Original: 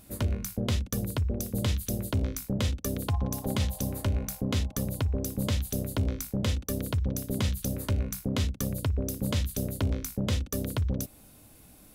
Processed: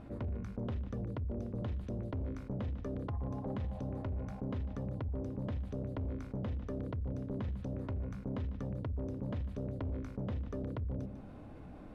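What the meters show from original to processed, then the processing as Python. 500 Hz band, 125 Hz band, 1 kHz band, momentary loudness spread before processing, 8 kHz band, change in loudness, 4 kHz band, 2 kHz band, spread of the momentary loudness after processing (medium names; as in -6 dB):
-6.5 dB, -8.5 dB, -8.0 dB, 2 LU, under -30 dB, -9.0 dB, -24.5 dB, -14.5 dB, 1 LU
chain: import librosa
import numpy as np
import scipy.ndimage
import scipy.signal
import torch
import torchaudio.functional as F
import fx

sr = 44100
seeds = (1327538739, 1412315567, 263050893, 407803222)

y = scipy.signal.sosfilt(scipy.signal.butter(2, 1300.0, 'lowpass', fs=sr, output='sos'), x)
y = fx.hum_notches(y, sr, base_hz=50, count=4)
y = 10.0 ** (-25.5 / 20.0) * np.tanh(y / 10.0 ** (-25.5 / 20.0))
y = y + 10.0 ** (-17.0 / 20.0) * np.pad(y, (int(149 * sr / 1000.0), 0))[:len(y)]
y = fx.env_flatten(y, sr, amount_pct=50)
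y = y * 10.0 ** (-7.0 / 20.0)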